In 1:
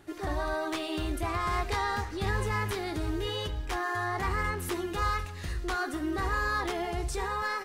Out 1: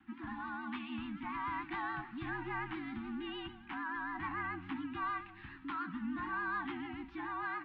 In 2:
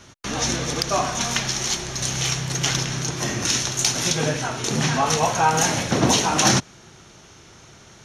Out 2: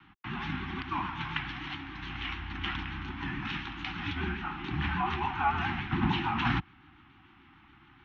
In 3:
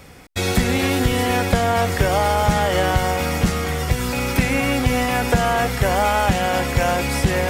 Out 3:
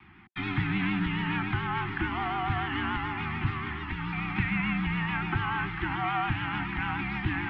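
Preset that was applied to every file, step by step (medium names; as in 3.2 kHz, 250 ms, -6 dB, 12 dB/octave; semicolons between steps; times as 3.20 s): mistuned SSB -78 Hz 150–3100 Hz; Chebyshev band-stop 360–780 Hz, order 4; vibrato 6.9 Hz 66 cents; trim -6.5 dB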